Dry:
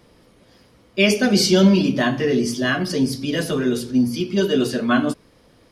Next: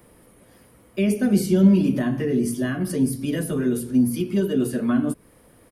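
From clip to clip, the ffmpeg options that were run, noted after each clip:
-filter_complex "[0:a]firequalizer=gain_entry='entry(1900,0);entry(3600,-7);entry(5200,-9);entry(9400,11)':delay=0.05:min_phase=1,acrossover=split=360[a][b];[b]acompressor=threshold=-31dB:ratio=6[c];[a][c]amix=inputs=2:normalize=0"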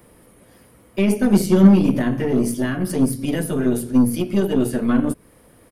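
-af "aeval=exprs='0.501*(cos(1*acos(clip(val(0)/0.501,-1,1)))-cos(1*PI/2))+0.0447*(cos(3*acos(clip(val(0)/0.501,-1,1)))-cos(3*PI/2))+0.0224*(cos(8*acos(clip(val(0)/0.501,-1,1)))-cos(8*PI/2))':c=same,volume=5dB"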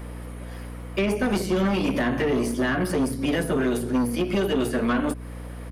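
-filter_complex "[0:a]acrossover=split=370|1800[a][b][c];[a]acompressor=threshold=-26dB:ratio=4[d];[b]acompressor=threshold=-32dB:ratio=4[e];[c]acompressor=threshold=-39dB:ratio=4[f];[d][e][f]amix=inputs=3:normalize=0,asplit=2[g][h];[h]highpass=f=720:p=1,volume=18dB,asoftclip=type=tanh:threshold=-13.5dB[i];[g][i]amix=inputs=2:normalize=0,lowpass=f=2.8k:p=1,volume=-6dB,aeval=exprs='val(0)+0.0178*(sin(2*PI*60*n/s)+sin(2*PI*2*60*n/s)/2+sin(2*PI*3*60*n/s)/3+sin(2*PI*4*60*n/s)/4+sin(2*PI*5*60*n/s)/5)':c=same"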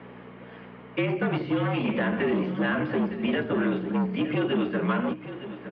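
-af "aecho=1:1:912:0.237,highpass=f=210:t=q:w=0.5412,highpass=f=210:t=q:w=1.307,lowpass=f=3.3k:t=q:w=0.5176,lowpass=f=3.3k:t=q:w=0.7071,lowpass=f=3.3k:t=q:w=1.932,afreqshift=-52,volume=-1.5dB"

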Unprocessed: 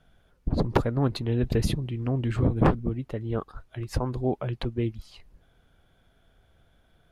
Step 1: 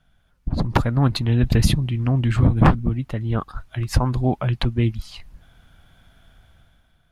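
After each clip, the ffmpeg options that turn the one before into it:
-af "equalizer=f=430:t=o:w=1:g=-11,dynaudnorm=f=120:g=11:m=11dB"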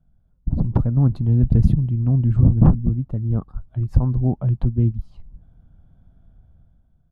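-af "firequalizer=gain_entry='entry(180,0);entry(320,-6);entry(2000,-29)':delay=0.05:min_phase=1,volume=2.5dB"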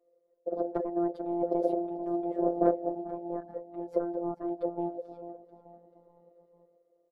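-filter_complex "[0:a]asplit=5[a][b][c][d][e];[b]adelay=438,afreqshift=47,volume=-16.5dB[f];[c]adelay=876,afreqshift=94,volume=-24.2dB[g];[d]adelay=1314,afreqshift=141,volume=-32dB[h];[e]adelay=1752,afreqshift=188,volume=-39.7dB[i];[a][f][g][h][i]amix=inputs=5:normalize=0,aeval=exprs='val(0)*sin(2*PI*500*n/s)':c=same,afftfilt=real='hypot(re,im)*cos(PI*b)':imag='0':win_size=1024:overlap=0.75,volume=-6.5dB"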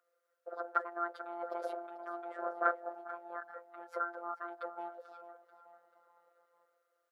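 -af "highpass=f=1.4k:t=q:w=8.7,volume=3.5dB"

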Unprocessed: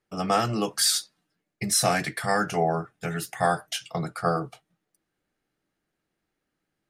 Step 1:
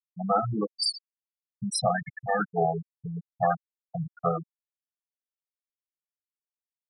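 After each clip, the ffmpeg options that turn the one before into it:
-af "afftfilt=real='re*gte(hypot(re,im),0.224)':imag='im*gte(hypot(re,im),0.224)':win_size=1024:overlap=0.75"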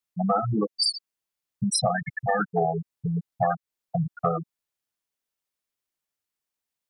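-af "acompressor=threshold=-31dB:ratio=3,volume=8.5dB"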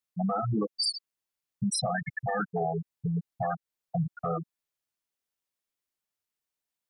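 -af "alimiter=limit=-18.5dB:level=0:latency=1:release=12,volume=-2.5dB"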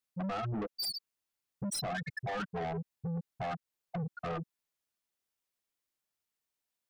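-af "asoftclip=type=tanh:threshold=-33dB"

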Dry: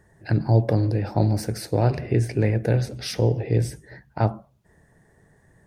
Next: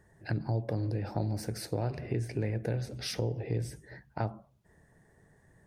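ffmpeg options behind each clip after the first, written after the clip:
-af "acompressor=threshold=-26dB:ratio=2.5,volume=-5dB"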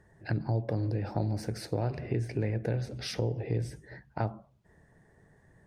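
-af "highshelf=f=8.4k:g=-11,volume=1.5dB"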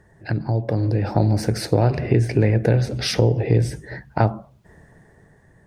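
-af "dynaudnorm=f=270:g=7:m=6.5dB,volume=7dB"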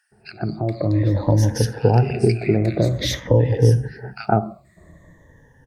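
-filter_complex "[0:a]afftfilt=real='re*pow(10,15/40*sin(2*PI*(1.1*log(max(b,1)*sr/1024/100)/log(2)-(-0.5)*(pts-256)/sr)))':imag='im*pow(10,15/40*sin(2*PI*(1.1*log(max(b,1)*sr/1024/100)/log(2)-(-0.5)*(pts-256)/sr)))':win_size=1024:overlap=0.75,acrossover=split=1600[a][b];[a]adelay=120[c];[c][b]amix=inputs=2:normalize=0,volume=-1dB"

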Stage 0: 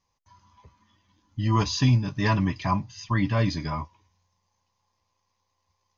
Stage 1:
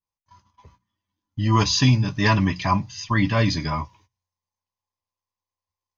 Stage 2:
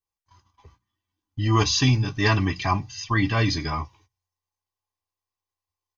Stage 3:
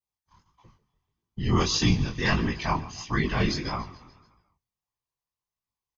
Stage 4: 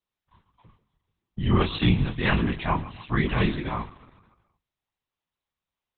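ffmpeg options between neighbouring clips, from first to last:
-af "agate=range=-21dB:threshold=-57dB:ratio=16:detection=peak,bandreject=f=60:t=h:w=6,bandreject=f=120:t=h:w=6,bandreject=f=180:t=h:w=6,adynamicequalizer=threshold=0.0141:dfrequency=1500:dqfactor=0.7:tfrequency=1500:tqfactor=0.7:attack=5:release=100:ratio=0.375:range=2:mode=boostabove:tftype=highshelf,volume=4dB"
-af "aecho=1:1:2.6:0.51,volume=-1.5dB"
-af "aecho=1:1:144|288|432|576|720:0.133|0.0707|0.0375|0.0199|0.0105,afftfilt=real='hypot(re,im)*cos(2*PI*random(0))':imag='hypot(re,im)*sin(2*PI*random(1))':win_size=512:overlap=0.75,flanger=delay=17:depth=8:speed=1.6,volume=5.5dB"
-af "volume=2.5dB" -ar 48000 -c:a libopus -b:a 8k

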